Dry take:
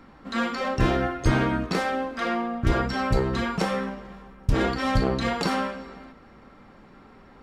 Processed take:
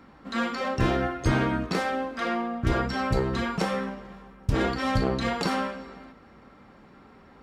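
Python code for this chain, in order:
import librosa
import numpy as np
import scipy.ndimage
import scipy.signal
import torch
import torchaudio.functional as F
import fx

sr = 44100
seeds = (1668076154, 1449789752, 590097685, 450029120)

y = scipy.signal.sosfilt(scipy.signal.butter(2, 41.0, 'highpass', fs=sr, output='sos'), x)
y = F.gain(torch.from_numpy(y), -1.5).numpy()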